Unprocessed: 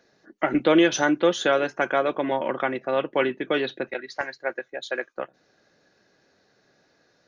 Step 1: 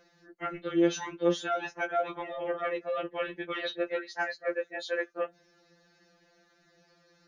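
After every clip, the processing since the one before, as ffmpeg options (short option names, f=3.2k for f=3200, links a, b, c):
-af "areverse,acompressor=threshold=-28dB:ratio=8,areverse,afftfilt=real='re*2.83*eq(mod(b,8),0)':imag='im*2.83*eq(mod(b,8),0)':win_size=2048:overlap=0.75,volume=2dB"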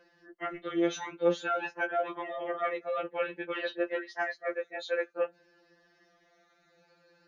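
-af "afftfilt=real='re*pow(10,7/40*sin(2*PI*(1.3*log(max(b,1)*sr/1024/100)/log(2)-(0.54)*(pts-256)/sr)))':imag='im*pow(10,7/40*sin(2*PI*(1.3*log(max(b,1)*sr/1024/100)/log(2)-(0.54)*(pts-256)/sr)))':win_size=1024:overlap=0.75,bass=f=250:g=-7,treble=f=4k:g=-8"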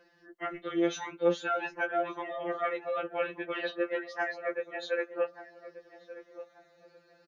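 -filter_complex "[0:a]asplit=2[a][b];[b]adelay=1183,lowpass=f=1k:p=1,volume=-13dB,asplit=2[c][d];[d]adelay=1183,lowpass=f=1k:p=1,volume=0.36,asplit=2[e][f];[f]adelay=1183,lowpass=f=1k:p=1,volume=0.36,asplit=2[g][h];[h]adelay=1183,lowpass=f=1k:p=1,volume=0.36[i];[a][c][e][g][i]amix=inputs=5:normalize=0"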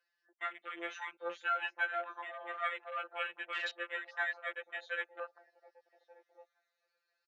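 -af "afwtdn=0.00794,highpass=1.3k,volume=1.5dB"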